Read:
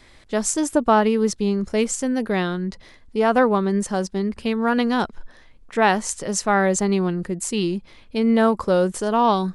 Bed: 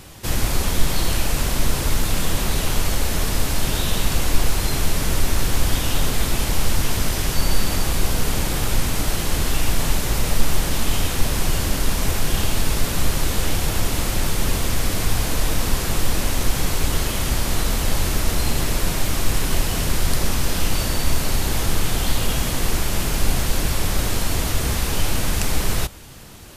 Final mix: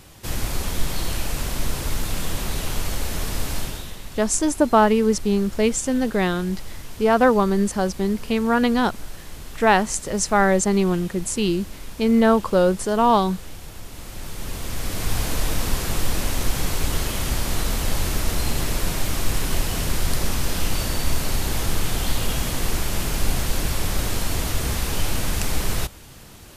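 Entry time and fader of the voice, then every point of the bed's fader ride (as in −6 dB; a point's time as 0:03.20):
3.85 s, +1.0 dB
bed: 0:03.58 −5 dB
0:03.98 −17 dB
0:13.86 −17 dB
0:15.18 −2.5 dB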